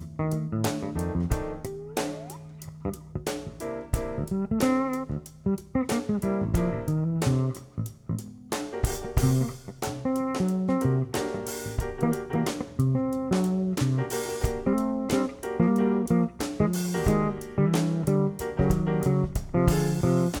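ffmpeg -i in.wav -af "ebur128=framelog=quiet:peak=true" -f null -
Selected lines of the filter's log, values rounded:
Integrated loudness:
  I:         -27.6 LUFS
  Threshold: -37.6 LUFS
Loudness range:
  LRA:         5.9 LU
  Threshold: -47.7 LUFS
  LRA low:   -31.4 LUFS
  LRA high:  -25.5 LUFS
True peak:
  Peak:       -9.0 dBFS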